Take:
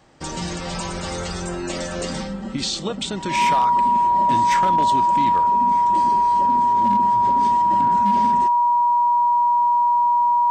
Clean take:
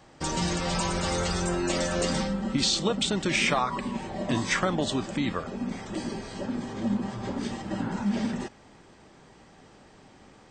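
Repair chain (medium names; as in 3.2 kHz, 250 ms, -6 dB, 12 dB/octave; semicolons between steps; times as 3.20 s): clip repair -12 dBFS; band-stop 960 Hz, Q 30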